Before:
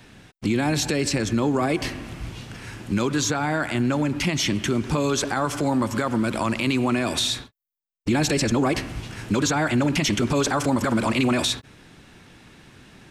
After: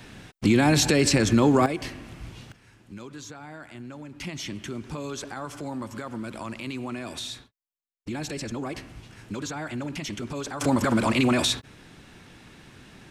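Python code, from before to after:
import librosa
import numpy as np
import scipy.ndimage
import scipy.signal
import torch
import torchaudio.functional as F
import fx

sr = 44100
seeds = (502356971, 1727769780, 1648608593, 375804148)

y = fx.gain(x, sr, db=fx.steps((0.0, 3.0), (1.66, -6.5), (2.52, -18.0), (4.2, -11.5), (10.61, -0.5)))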